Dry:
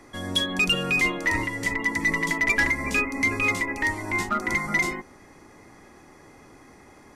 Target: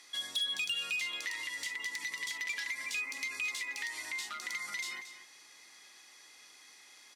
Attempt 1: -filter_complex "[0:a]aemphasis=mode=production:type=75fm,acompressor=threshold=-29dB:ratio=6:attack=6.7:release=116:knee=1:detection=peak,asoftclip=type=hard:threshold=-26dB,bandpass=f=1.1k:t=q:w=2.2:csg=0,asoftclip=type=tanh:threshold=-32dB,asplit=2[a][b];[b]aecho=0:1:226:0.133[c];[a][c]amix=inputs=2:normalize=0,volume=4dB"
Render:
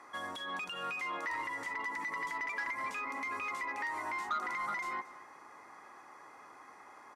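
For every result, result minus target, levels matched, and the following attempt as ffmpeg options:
hard clip: distortion +30 dB; 1000 Hz band +15.5 dB; echo-to-direct -6 dB
-filter_complex "[0:a]aemphasis=mode=production:type=75fm,acompressor=threshold=-29dB:ratio=6:attack=6.7:release=116:knee=1:detection=peak,asoftclip=type=hard:threshold=-15dB,bandpass=f=1.1k:t=q:w=2.2:csg=0,asoftclip=type=tanh:threshold=-32dB,asplit=2[a][b];[b]aecho=0:1:226:0.133[c];[a][c]amix=inputs=2:normalize=0,volume=4dB"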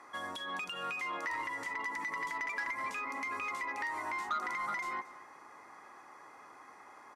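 1000 Hz band +15.5 dB; echo-to-direct -6 dB
-filter_complex "[0:a]aemphasis=mode=production:type=75fm,acompressor=threshold=-29dB:ratio=6:attack=6.7:release=116:knee=1:detection=peak,asoftclip=type=hard:threshold=-15dB,bandpass=f=3.6k:t=q:w=2.2:csg=0,asoftclip=type=tanh:threshold=-32dB,asplit=2[a][b];[b]aecho=0:1:226:0.133[c];[a][c]amix=inputs=2:normalize=0,volume=4dB"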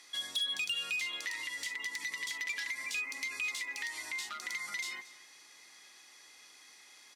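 echo-to-direct -6 dB
-filter_complex "[0:a]aemphasis=mode=production:type=75fm,acompressor=threshold=-29dB:ratio=6:attack=6.7:release=116:knee=1:detection=peak,asoftclip=type=hard:threshold=-15dB,bandpass=f=3.6k:t=q:w=2.2:csg=0,asoftclip=type=tanh:threshold=-32dB,asplit=2[a][b];[b]aecho=0:1:226:0.266[c];[a][c]amix=inputs=2:normalize=0,volume=4dB"

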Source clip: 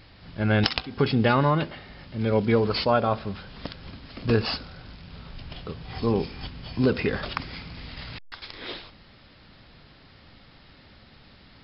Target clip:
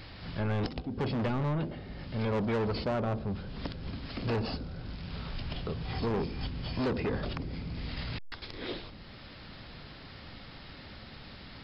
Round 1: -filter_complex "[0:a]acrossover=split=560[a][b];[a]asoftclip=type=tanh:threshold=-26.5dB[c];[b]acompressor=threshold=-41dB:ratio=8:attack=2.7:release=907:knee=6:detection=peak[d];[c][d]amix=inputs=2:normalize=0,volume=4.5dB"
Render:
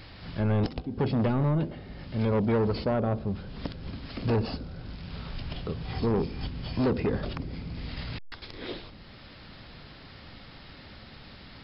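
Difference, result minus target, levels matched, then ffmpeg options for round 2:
soft clip: distortion -4 dB
-filter_complex "[0:a]acrossover=split=560[a][b];[a]asoftclip=type=tanh:threshold=-33.5dB[c];[b]acompressor=threshold=-41dB:ratio=8:attack=2.7:release=907:knee=6:detection=peak[d];[c][d]amix=inputs=2:normalize=0,volume=4.5dB"

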